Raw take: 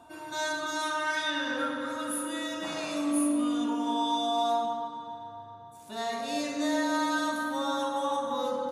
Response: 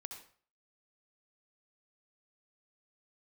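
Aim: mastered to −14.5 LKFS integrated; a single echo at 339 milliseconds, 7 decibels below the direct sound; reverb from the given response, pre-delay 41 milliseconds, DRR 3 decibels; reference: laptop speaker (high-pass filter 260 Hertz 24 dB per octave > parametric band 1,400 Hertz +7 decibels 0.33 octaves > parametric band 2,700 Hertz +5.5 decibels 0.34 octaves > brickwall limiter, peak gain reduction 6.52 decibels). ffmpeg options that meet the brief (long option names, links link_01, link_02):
-filter_complex "[0:a]aecho=1:1:339:0.447,asplit=2[link_01][link_02];[1:a]atrim=start_sample=2205,adelay=41[link_03];[link_02][link_03]afir=irnorm=-1:irlink=0,volume=1dB[link_04];[link_01][link_04]amix=inputs=2:normalize=0,highpass=frequency=260:width=0.5412,highpass=frequency=260:width=1.3066,equalizer=frequency=1400:width_type=o:width=0.33:gain=7,equalizer=frequency=2700:width_type=o:width=0.34:gain=5.5,volume=14dB,alimiter=limit=-6dB:level=0:latency=1"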